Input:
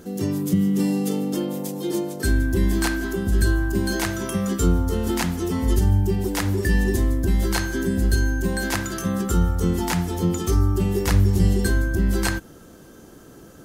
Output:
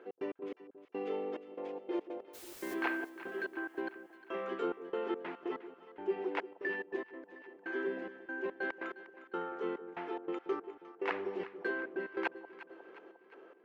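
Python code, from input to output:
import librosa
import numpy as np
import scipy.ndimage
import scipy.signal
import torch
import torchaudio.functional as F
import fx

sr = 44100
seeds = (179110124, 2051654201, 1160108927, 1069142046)

y = scipy.signal.sosfilt(scipy.signal.ellip(3, 1.0, 80, [380.0, 2600.0], 'bandpass', fs=sr, output='sos'), x)
y = fx.step_gate(y, sr, bpm=143, pattern='x.x.x....xxxx..x', floor_db=-60.0, edge_ms=4.5)
y = fx.dmg_noise_colour(y, sr, seeds[0], colour='white', level_db=-46.0, at=(2.33, 2.73), fade=0.02)
y = fx.echo_alternate(y, sr, ms=178, hz=820.0, feedback_pct=74, wet_db=-12)
y = fx.upward_expand(y, sr, threshold_db=-43.0, expansion=1.5, at=(6.53, 7.29))
y = y * 10.0 ** (-6.0 / 20.0)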